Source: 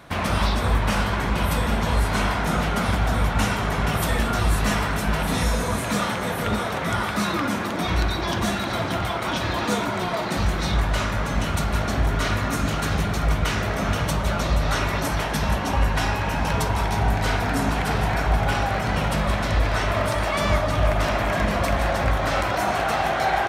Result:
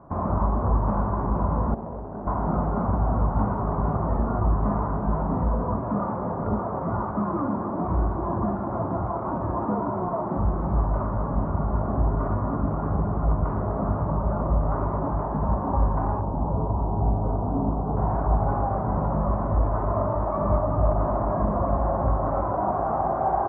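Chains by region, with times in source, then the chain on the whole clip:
1.74–2.27 median filter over 41 samples + RIAA curve recording
16.21–17.97 delta modulation 16 kbps, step -21.5 dBFS + Bessel low-pass 740 Hz, order 4
whole clip: Chebyshev low-pass 1100 Hz, order 4; notch 480 Hz, Q 12

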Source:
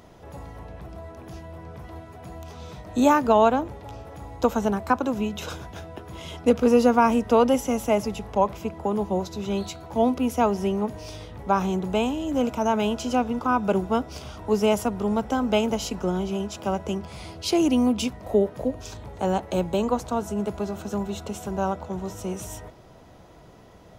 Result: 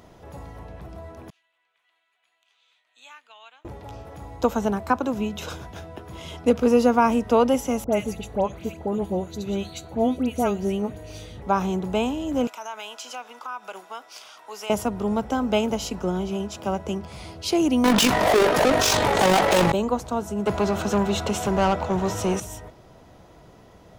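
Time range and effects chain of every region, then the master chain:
1.3–3.65 ladder band-pass 3700 Hz, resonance 25% + bell 5300 Hz -13.5 dB 0.54 oct
7.84–11.42 Butterworth band-stop 5200 Hz, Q 7 + bell 1000 Hz -8 dB 0.58 oct + dispersion highs, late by 88 ms, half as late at 1900 Hz
12.47–14.7 HPF 1100 Hz + compressor 2:1, threshold -33 dBFS
17.84–19.72 overdrive pedal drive 41 dB, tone 7800 Hz, clips at -9 dBFS + AM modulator 48 Hz, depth 35%
20.46–22.4 bell 92 Hz +10.5 dB 1.9 oct + overdrive pedal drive 20 dB, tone 4400 Hz, clips at -12 dBFS
whole clip: dry

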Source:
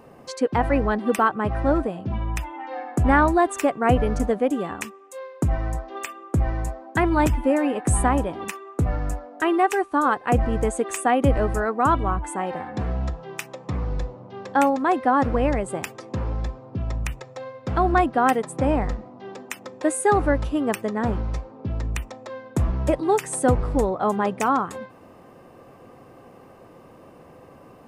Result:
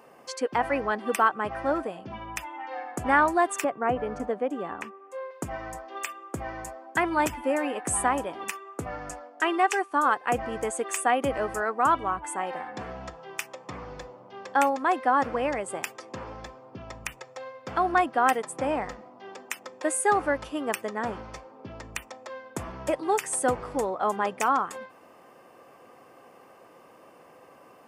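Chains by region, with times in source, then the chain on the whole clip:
3.64–5.31 LPF 1100 Hz 6 dB/oct + three-band squash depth 40%
9.09–9.8 LPF 6400 Hz + expander -40 dBFS + high shelf 5000 Hz +9 dB
whole clip: HPF 760 Hz 6 dB/oct; notch 3900 Hz, Q 9.7

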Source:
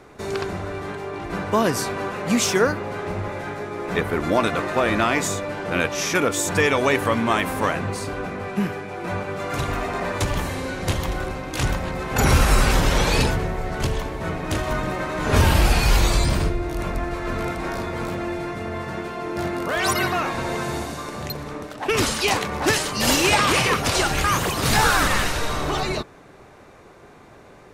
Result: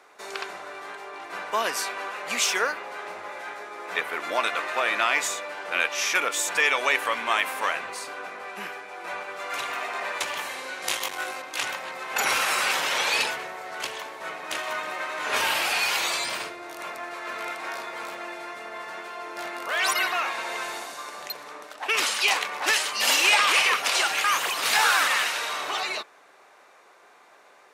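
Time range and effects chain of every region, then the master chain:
10.82–11.42 bell 11000 Hz +7.5 dB 2 oct + doubler 19 ms -2 dB + core saturation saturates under 280 Hz
whole clip: HPF 740 Hz 12 dB/oct; dynamic EQ 2600 Hz, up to +5 dB, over -38 dBFS, Q 1.3; gain -2.5 dB

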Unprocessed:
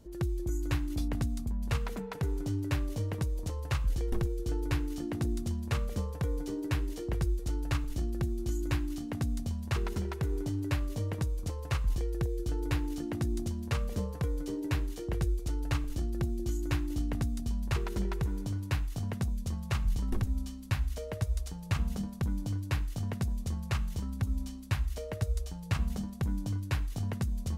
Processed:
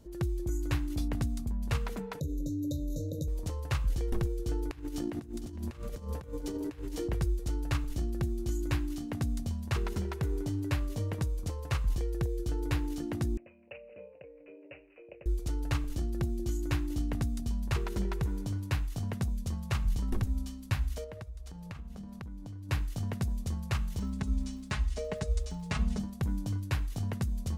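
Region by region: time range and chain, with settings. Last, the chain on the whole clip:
2.2–3.28 ripple EQ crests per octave 1.1, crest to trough 13 dB + compressor 4:1, threshold -30 dBFS + brick-wall FIR band-stop 680–3600 Hz
4.71–7.08 notches 50/100/150/200/250/300 Hz + negative-ratio compressor -37 dBFS, ratio -0.5 + echo 0.457 s -13.5 dB
13.37–15.26 double band-pass 1300 Hz, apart 2.4 oct + careless resampling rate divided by 8×, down none, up filtered
21.04–22.69 high shelf 4300 Hz -7 dB + compressor, threshold -40 dBFS
23.99–25.98 LPF 8900 Hz 24 dB/oct + comb 4.7 ms, depth 79% + crackle 350/s -53 dBFS
whole clip: dry

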